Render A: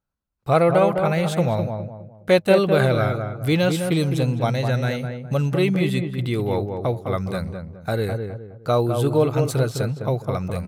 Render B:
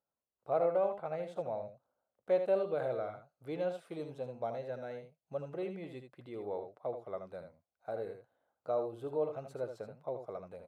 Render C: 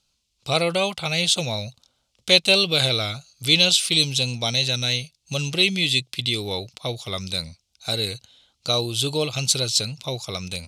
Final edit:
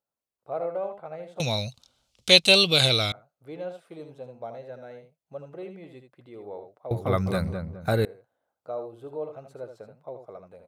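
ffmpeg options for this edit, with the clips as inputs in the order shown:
-filter_complex "[1:a]asplit=3[s0][s1][s2];[s0]atrim=end=1.402[s3];[2:a]atrim=start=1.398:end=3.122[s4];[s1]atrim=start=3.118:end=6.912[s5];[0:a]atrim=start=6.908:end=8.052[s6];[s2]atrim=start=8.048[s7];[s3][s4]acrossfade=d=0.004:c1=hsin:c2=hsin[s8];[s8][s5]acrossfade=d=0.004:c1=hsin:c2=hsin[s9];[s9][s6]acrossfade=d=0.004:c1=hsin:c2=hsin[s10];[s10][s7]acrossfade=d=0.004:c1=hsin:c2=hsin"

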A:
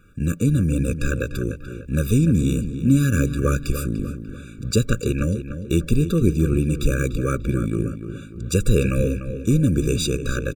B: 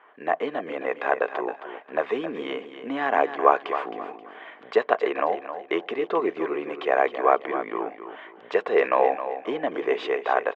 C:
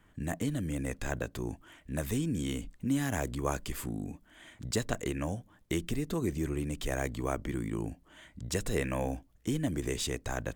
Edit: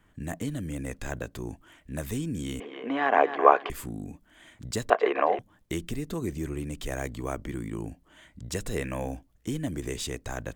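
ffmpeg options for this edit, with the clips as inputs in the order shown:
-filter_complex "[1:a]asplit=2[s0][s1];[2:a]asplit=3[s2][s3][s4];[s2]atrim=end=2.602[s5];[s0]atrim=start=2.598:end=3.702[s6];[s3]atrim=start=3.698:end=4.902[s7];[s1]atrim=start=4.898:end=5.392[s8];[s4]atrim=start=5.388[s9];[s5][s6]acrossfade=d=0.004:c1=hsin:c2=hsin[s10];[s10][s7]acrossfade=d=0.004:c1=hsin:c2=hsin[s11];[s11][s8]acrossfade=d=0.004:c1=hsin:c2=hsin[s12];[s12][s9]acrossfade=d=0.004:c1=hsin:c2=hsin"

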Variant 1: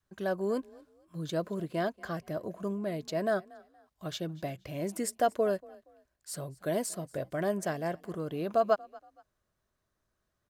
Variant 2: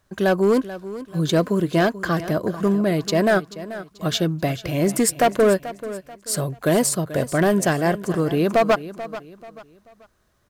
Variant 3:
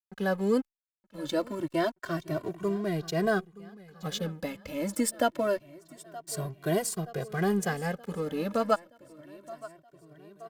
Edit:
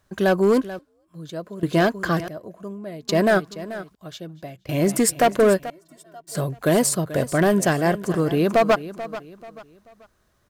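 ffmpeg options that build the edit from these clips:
-filter_complex "[0:a]asplit=3[s0][s1][s2];[1:a]asplit=5[s3][s4][s5][s6][s7];[s3]atrim=end=0.792[s8];[s0]atrim=start=0.788:end=1.632[s9];[s4]atrim=start=1.628:end=2.282[s10];[s1]atrim=start=2.278:end=3.092[s11];[s5]atrim=start=3.088:end=3.952[s12];[s2]atrim=start=3.948:end=4.692[s13];[s6]atrim=start=4.688:end=5.702[s14];[2:a]atrim=start=5.698:end=6.352[s15];[s7]atrim=start=6.348[s16];[s8][s9]acrossfade=d=0.004:c1=hsin:c2=hsin[s17];[s17][s10]acrossfade=d=0.004:c1=hsin:c2=hsin[s18];[s18][s11]acrossfade=d=0.004:c1=hsin:c2=hsin[s19];[s19][s12]acrossfade=d=0.004:c1=hsin:c2=hsin[s20];[s20][s13]acrossfade=d=0.004:c1=hsin:c2=hsin[s21];[s21][s14]acrossfade=d=0.004:c1=hsin:c2=hsin[s22];[s22][s15]acrossfade=d=0.004:c1=hsin:c2=hsin[s23];[s23][s16]acrossfade=d=0.004:c1=hsin:c2=hsin"

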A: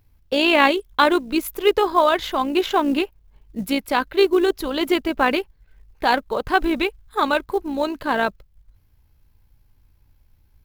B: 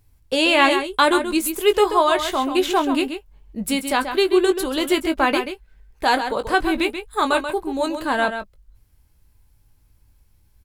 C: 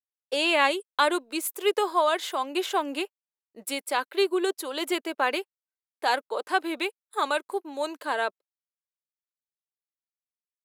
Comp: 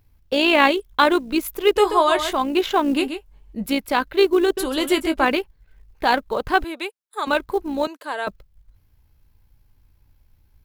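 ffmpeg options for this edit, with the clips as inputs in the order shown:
-filter_complex "[1:a]asplit=3[s0][s1][s2];[2:a]asplit=2[s3][s4];[0:a]asplit=6[s5][s6][s7][s8][s9][s10];[s5]atrim=end=1.762[s11];[s0]atrim=start=1.758:end=2.332[s12];[s6]atrim=start=2.328:end=2.972[s13];[s1]atrim=start=2.968:end=3.662[s14];[s7]atrim=start=3.658:end=4.572[s15];[s2]atrim=start=4.568:end=5.252[s16];[s8]atrim=start=5.248:end=6.642[s17];[s3]atrim=start=6.638:end=7.272[s18];[s9]atrim=start=7.268:end=7.872[s19];[s4]atrim=start=7.868:end=8.272[s20];[s10]atrim=start=8.268[s21];[s11][s12]acrossfade=d=0.004:c1=hsin:c2=hsin[s22];[s22][s13]acrossfade=d=0.004:c1=hsin:c2=hsin[s23];[s23][s14]acrossfade=d=0.004:c1=hsin:c2=hsin[s24];[s24][s15]acrossfade=d=0.004:c1=hsin:c2=hsin[s25];[s25][s16]acrossfade=d=0.004:c1=hsin:c2=hsin[s26];[s26][s17]acrossfade=d=0.004:c1=hsin:c2=hsin[s27];[s27][s18]acrossfade=d=0.004:c1=hsin:c2=hsin[s28];[s28][s19]acrossfade=d=0.004:c1=hsin:c2=hsin[s29];[s29][s20]acrossfade=d=0.004:c1=hsin:c2=hsin[s30];[s30][s21]acrossfade=d=0.004:c1=hsin:c2=hsin"

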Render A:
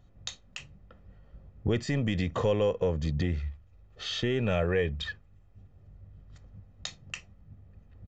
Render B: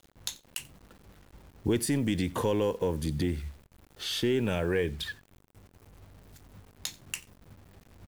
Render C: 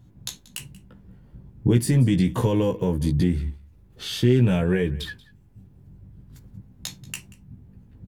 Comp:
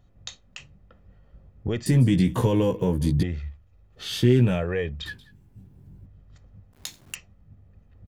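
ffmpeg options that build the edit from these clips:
-filter_complex "[2:a]asplit=3[s0][s1][s2];[0:a]asplit=5[s3][s4][s5][s6][s7];[s3]atrim=end=1.862[s8];[s0]atrim=start=1.858:end=3.232[s9];[s4]atrim=start=3.228:end=4.15[s10];[s1]atrim=start=3.91:end=4.65[s11];[s5]atrim=start=4.41:end=5.062[s12];[s2]atrim=start=5.058:end=6.062[s13];[s6]atrim=start=6.058:end=6.732[s14];[1:a]atrim=start=6.728:end=7.152[s15];[s7]atrim=start=7.148[s16];[s8][s9]acrossfade=d=0.004:c1=hsin:c2=hsin[s17];[s17][s10]acrossfade=d=0.004:c1=hsin:c2=hsin[s18];[s18][s11]acrossfade=d=0.24:c1=tri:c2=tri[s19];[s19][s12]acrossfade=d=0.24:c1=tri:c2=tri[s20];[s20][s13]acrossfade=d=0.004:c1=hsin:c2=hsin[s21];[s21][s14]acrossfade=d=0.004:c1=hsin:c2=hsin[s22];[s22][s15]acrossfade=d=0.004:c1=hsin:c2=hsin[s23];[s23][s16]acrossfade=d=0.004:c1=hsin:c2=hsin"

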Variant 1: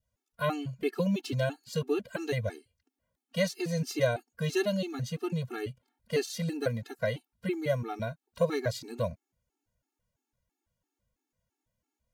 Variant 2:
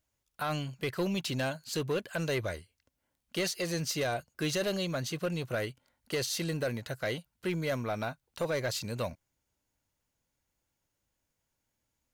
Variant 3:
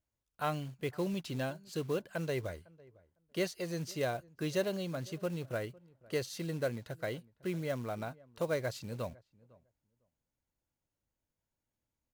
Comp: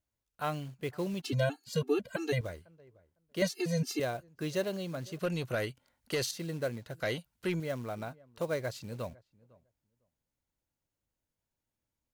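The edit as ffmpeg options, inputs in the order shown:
-filter_complex "[0:a]asplit=2[s0][s1];[1:a]asplit=2[s2][s3];[2:a]asplit=5[s4][s5][s6][s7][s8];[s4]atrim=end=1.222[s9];[s0]atrim=start=1.218:end=2.412[s10];[s5]atrim=start=2.408:end=3.422[s11];[s1]atrim=start=3.418:end=4.002[s12];[s6]atrim=start=3.998:end=5.192[s13];[s2]atrim=start=5.188:end=6.312[s14];[s7]atrim=start=6.308:end=7.002[s15];[s3]atrim=start=6.998:end=7.602[s16];[s8]atrim=start=7.598[s17];[s9][s10]acrossfade=d=0.004:c1=hsin:c2=hsin[s18];[s18][s11]acrossfade=d=0.004:c1=hsin:c2=hsin[s19];[s19][s12]acrossfade=d=0.004:c1=hsin:c2=hsin[s20];[s20][s13]acrossfade=d=0.004:c1=hsin:c2=hsin[s21];[s21][s14]acrossfade=d=0.004:c1=hsin:c2=hsin[s22];[s22][s15]acrossfade=d=0.004:c1=hsin:c2=hsin[s23];[s23][s16]acrossfade=d=0.004:c1=hsin:c2=hsin[s24];[s24][s17]acrossfade=d=0.004:c1=hsin:c2=hsin"

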